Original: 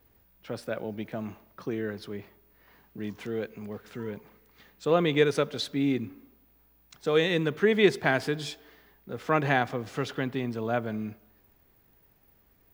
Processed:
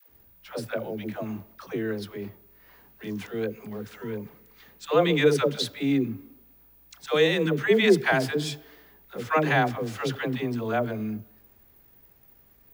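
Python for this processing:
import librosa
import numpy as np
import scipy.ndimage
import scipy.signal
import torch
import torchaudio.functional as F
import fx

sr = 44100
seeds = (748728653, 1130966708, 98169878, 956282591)

y = fx.high_shelf(x, sr, hz=8300.0, db=6.0)
y = fx.dispersion(y, sr, late='lows', ms=99.0, hz=490.0)
y = y * librosa.db_to_amplitude(2.5)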